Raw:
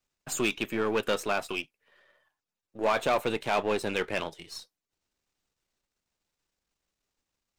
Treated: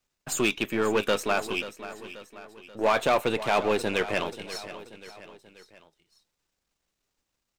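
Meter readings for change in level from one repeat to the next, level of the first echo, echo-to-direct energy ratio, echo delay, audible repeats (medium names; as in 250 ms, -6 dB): -6.0 dB, -14.0 dB, -13.0 dB, 534 ms, 3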